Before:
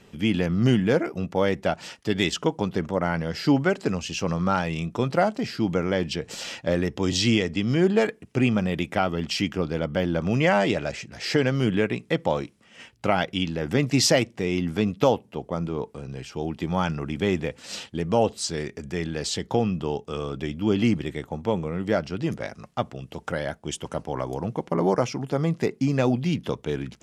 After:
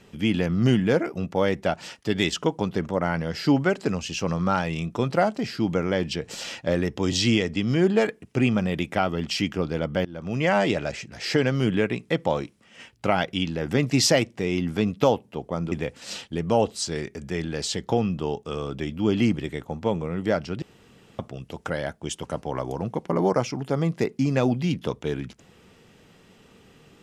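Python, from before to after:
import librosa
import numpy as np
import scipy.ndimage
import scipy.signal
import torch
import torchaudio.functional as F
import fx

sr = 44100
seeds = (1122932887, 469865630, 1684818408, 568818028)

y = fx.edit(x, sr, fx.fade_in_from(start_s=10.05, length_s=0.53, floor_db=-21.5),
    fx.cut(start_s=15.72, length_s=1.62),
    fx.room_tone_fill(start_s=22.24, length_s=0.57), tone=tone)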